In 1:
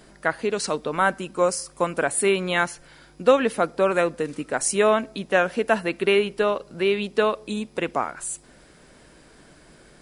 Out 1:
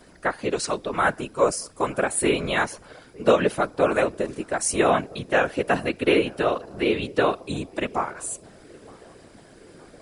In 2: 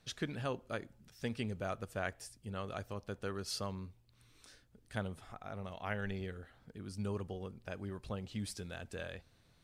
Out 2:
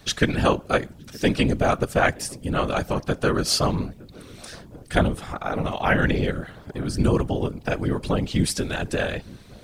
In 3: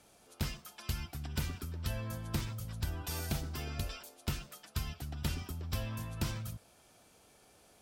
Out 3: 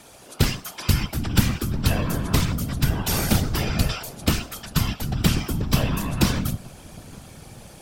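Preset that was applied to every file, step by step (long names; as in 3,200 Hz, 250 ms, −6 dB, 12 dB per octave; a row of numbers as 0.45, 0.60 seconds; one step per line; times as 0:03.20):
feedback echo with a low-pass in the loop 917 ms, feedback 76%, low-pass 880 Hz, level −22.5 dB
random phases in short frames
loudness normalisation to −24 LKFS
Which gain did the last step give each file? −1.0, +18.5, +15.5 decibels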